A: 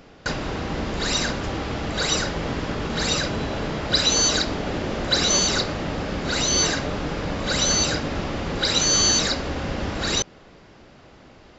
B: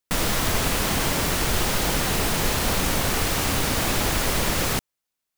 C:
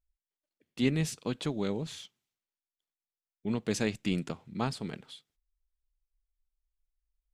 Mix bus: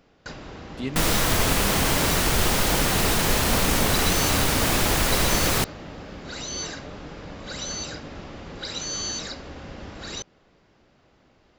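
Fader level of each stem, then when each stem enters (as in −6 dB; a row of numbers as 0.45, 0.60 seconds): −11.5, +1.5, −3.5 decibels; 0.00, 0.85, 0.00 seconds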